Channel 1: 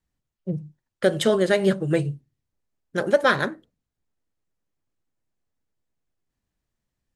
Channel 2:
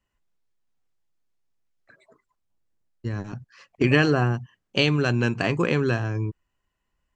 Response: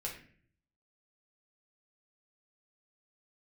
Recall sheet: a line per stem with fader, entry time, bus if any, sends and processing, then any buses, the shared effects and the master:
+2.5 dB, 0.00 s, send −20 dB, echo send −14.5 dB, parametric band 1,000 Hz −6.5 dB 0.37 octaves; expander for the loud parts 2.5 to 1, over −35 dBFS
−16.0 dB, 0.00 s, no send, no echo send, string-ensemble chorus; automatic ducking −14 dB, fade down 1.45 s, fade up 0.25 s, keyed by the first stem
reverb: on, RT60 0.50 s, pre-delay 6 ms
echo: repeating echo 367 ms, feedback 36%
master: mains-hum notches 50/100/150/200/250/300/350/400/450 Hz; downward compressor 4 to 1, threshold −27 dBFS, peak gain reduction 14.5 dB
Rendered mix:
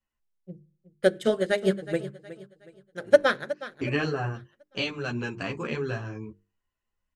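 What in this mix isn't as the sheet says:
stem 2 −16.0 dB → −4.5 dB
master: missing downward compressor 4 to 1, threshold −27 dBFS, peak gain reduction 14.5 dB

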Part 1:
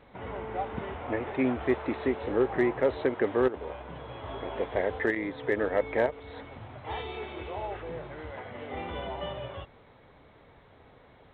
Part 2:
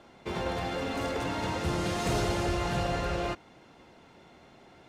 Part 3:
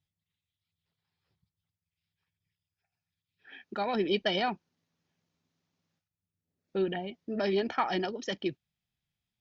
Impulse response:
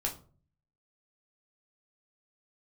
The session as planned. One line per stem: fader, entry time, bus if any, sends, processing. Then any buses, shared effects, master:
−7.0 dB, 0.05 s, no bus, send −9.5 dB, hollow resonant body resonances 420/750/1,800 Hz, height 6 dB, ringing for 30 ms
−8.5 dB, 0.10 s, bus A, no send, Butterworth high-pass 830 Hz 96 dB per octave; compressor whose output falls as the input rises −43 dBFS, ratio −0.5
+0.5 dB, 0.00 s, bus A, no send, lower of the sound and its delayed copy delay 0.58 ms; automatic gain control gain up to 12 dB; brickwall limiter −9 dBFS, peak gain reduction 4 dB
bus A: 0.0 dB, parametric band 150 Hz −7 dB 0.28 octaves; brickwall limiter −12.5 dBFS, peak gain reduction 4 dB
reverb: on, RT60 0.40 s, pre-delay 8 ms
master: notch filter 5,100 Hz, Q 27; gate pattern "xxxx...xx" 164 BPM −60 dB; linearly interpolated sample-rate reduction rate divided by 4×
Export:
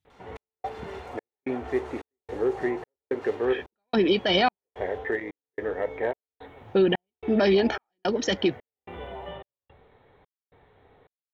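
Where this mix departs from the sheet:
stem 3: missing lower of the sound and its delayed copy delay 0.58 ms
master: missing linearly interpolated sample-rate reduction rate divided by 4×

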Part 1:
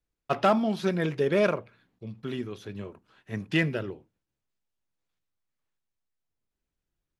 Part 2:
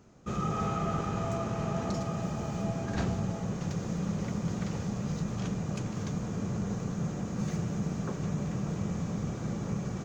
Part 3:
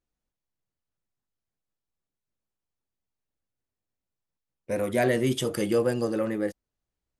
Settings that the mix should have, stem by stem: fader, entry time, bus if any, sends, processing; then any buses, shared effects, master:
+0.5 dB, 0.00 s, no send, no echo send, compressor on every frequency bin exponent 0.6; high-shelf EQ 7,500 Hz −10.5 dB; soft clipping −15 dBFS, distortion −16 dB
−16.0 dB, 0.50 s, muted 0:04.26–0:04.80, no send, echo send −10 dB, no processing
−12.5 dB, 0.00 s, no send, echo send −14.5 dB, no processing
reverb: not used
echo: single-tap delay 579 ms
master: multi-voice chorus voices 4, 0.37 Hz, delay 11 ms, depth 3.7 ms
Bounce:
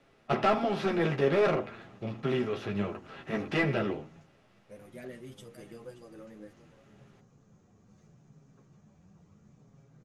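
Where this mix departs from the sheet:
stem 2 −16.0 dB → −24.0 dB
stem 3 −12.5 dB → −19.0 dB

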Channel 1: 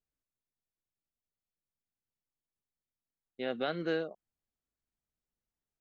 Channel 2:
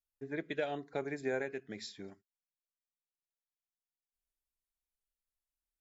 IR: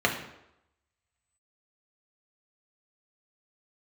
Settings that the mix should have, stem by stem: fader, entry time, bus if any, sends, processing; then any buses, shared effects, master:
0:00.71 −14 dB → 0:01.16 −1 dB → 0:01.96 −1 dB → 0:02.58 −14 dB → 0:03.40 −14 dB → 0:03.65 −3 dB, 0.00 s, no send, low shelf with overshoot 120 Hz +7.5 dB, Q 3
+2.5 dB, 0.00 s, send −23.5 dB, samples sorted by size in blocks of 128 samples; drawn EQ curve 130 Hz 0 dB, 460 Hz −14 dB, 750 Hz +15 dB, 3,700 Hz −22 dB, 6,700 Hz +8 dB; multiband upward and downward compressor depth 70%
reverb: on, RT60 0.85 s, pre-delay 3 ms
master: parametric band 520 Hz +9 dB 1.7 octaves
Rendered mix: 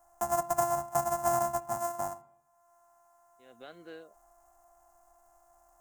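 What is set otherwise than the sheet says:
stem 1 −14.0 dB → −25.0 dB
master: missing parametric band 520 Hz +9 dB 1.7 octaves

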